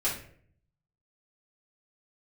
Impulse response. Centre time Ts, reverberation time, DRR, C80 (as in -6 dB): 30 ms, 0.55 s, -9.0 dB, 11.0 dB